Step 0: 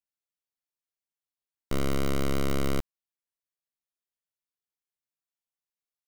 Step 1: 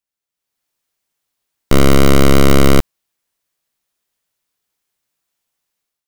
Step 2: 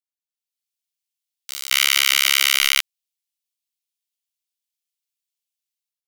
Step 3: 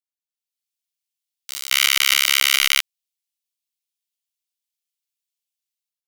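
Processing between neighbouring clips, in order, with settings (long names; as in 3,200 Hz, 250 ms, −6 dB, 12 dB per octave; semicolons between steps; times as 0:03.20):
automatic gain control gain up to 12 dB; level +6 dB
inverse Chebyshev high-pass filter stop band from 560 Hz, stop band 70 dB; backwards echo 221 ms −23 dB; leveller curve on the samples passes 5
regular buffer underruns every 0.14 s, samples 256, repeat, from 0:00.72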